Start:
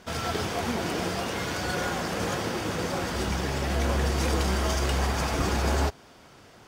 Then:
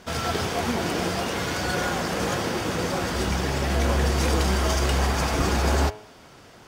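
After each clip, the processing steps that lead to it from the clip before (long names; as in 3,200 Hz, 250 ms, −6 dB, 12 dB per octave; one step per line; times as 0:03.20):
hum removal 106.2 Hz, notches 35
level +3.5 dB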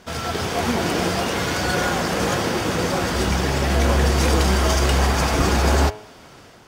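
automatic gain control gain up to 4.5 dB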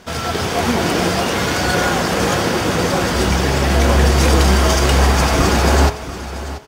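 single-tap delay 685 ms −14 dB
level +4.5 dB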